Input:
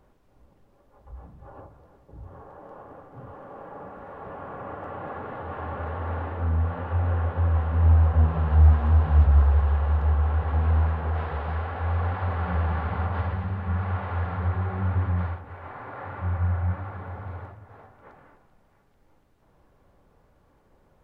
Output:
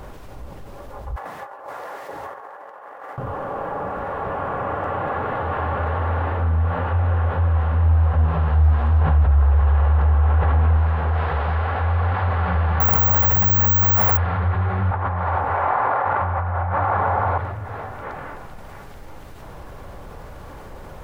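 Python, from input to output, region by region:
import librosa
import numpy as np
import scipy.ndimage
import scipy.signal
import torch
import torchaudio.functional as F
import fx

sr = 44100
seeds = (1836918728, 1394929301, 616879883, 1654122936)

y = fx.chain(x, sr, fx.highpass(hz=600.0, slope=12),
    fx.peak_eq(hz=1900.0, db=8.0, octaves=0.4),
    fx.over_compress(threshold_db=-56.0, ratio=-0.5), at=(1.16, 3.18))
y = fx.chain(y, sr, fx.air_absorb(metres=170.0),
    fx.env_flatten(amount_pct=50), at=(9.01, 10.77))
y = fx.chain(y, sr, fx.resample_bad(factor=2, down='none', up='zero_stuff'),
    fx.env_flatten(amount_pct=100), at=(12.8, 14.17))
y = fx.chain(y, sr, fx.peak_eq(hz=840.0, db=14.0, octaves=2.1),
    fx.over_compress(threshold_db=-29.0, ratio=-1.0), at=(14.91, 17.38))
y = fx.peak_eq(y, sr, hz=250.0, db=-5.0, octaves=1.8)
y = fx.env_flatten(y, sr, amount_pct=50)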